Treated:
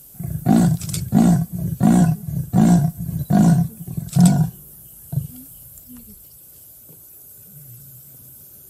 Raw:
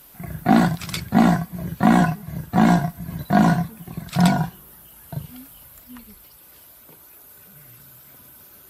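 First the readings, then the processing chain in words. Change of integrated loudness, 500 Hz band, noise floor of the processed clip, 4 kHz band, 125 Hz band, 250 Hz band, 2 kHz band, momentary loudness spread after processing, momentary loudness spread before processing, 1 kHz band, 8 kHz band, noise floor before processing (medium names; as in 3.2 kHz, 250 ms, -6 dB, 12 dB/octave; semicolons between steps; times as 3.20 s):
+2.0 dB, -2.5 dB, -45 dBFS, -4.0 dB, +5.5 dB, +2.5 dB, -10.0 dB, 13 LU, 18 LU, -6.5 dB, +7.0 dB, -48 dBFS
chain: graphic EQ 125/250/1000/2000/4000/8000 Hz +8/-3/-11/-11/-6/+8 dB; trim +2 dB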